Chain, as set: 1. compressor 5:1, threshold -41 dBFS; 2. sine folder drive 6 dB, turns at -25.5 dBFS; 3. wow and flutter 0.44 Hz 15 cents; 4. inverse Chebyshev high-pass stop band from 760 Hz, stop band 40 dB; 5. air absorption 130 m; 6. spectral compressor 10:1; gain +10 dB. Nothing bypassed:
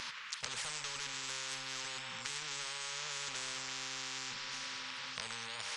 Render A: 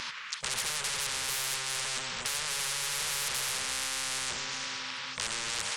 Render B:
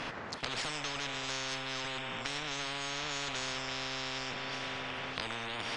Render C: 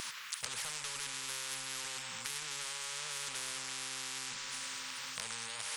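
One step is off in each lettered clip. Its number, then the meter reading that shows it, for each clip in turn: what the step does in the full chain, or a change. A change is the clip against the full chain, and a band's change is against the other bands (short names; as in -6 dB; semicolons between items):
1, mean gain reduction 13.0 dB; 4, 8 kHz band -11.0 dB; 5, 8 kHz band +4.0 dB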